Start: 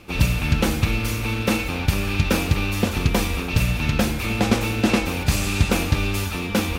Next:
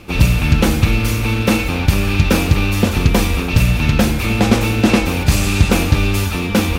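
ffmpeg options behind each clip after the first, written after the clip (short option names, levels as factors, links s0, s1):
-filter_complex "[0:a]lowshelf=f=360:g=3,asplit=2[s0][s1];[s1]acontrast=63,volume=1.12[s2];[s0][s2]amix=inputs=2:normalize=0,volume=0.562"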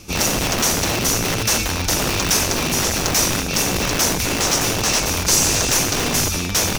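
-filter_complex "[0:a]bass=f=250:g=3,treble=f=4000:g=11,acrossover=split=2200[s0][s1];[s0]aeval=exprs='(mod(3.55*val(0)+1,2)-1)/3.55':c=same[s2];[s1]equalizer=f=5900:w=2.4:g=11[s3];[s2][s3]amix=inputs=2:normalize=0,volume=0.501"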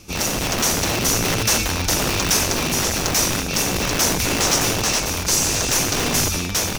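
-af "dynaudnorm=f=100:g=9:m=3.76,volume=0.668"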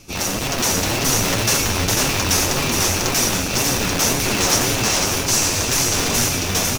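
-filter_complex "[0:a]flanger=delay=7.1:depth=3.9:regen=41:speed=1.9:shape=sinusoidal,asplit=2[s0][s1];[s1]aecho=0:1:496:0.668[s2];[s0][s2]amix=inputs=2:normalize=0,volume=1.5"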